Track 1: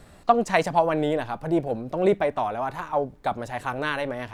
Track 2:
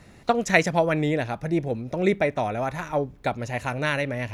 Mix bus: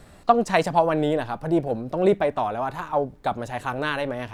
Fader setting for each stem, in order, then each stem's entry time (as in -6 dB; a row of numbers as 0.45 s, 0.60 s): +1.0 dB, -18.0 dB; 0.00 s, 0.00 s